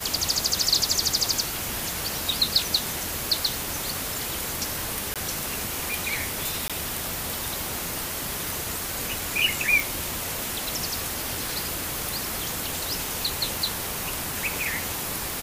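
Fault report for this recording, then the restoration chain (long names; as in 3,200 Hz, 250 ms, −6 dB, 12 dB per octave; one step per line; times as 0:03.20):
surface crackle 41 per second −36 dBFS
0:05.14–0:05.16: drop-out 17 ms
0:06.68–0:06.70: drop-out 16 ms
0:09.80: click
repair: click removal
repair the gap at 0:05.14, 17 ms
repair the gap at 0:06.68, 16 ms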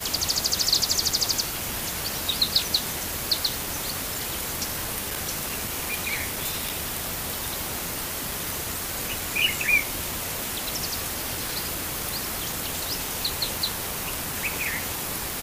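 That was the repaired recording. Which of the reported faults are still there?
none of them is left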